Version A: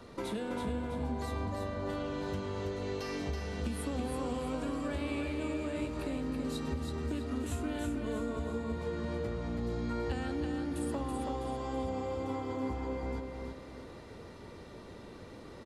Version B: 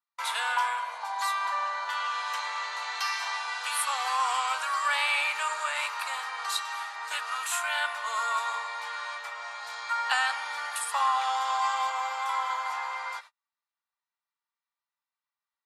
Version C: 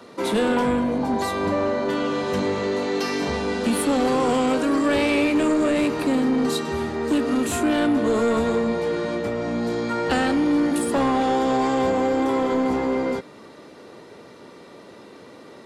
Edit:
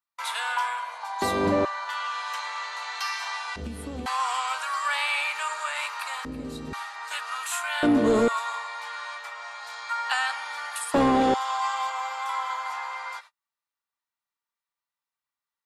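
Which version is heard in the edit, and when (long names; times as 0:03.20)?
B
0:01.22–0:01.65: punch in from C
0:03.56–0:04.06: punch in from A
0:06.25–0:06.73: punch in from A
0:07.83–0:08.28: punch in from C
0:10.94–0:11.34: punch in from C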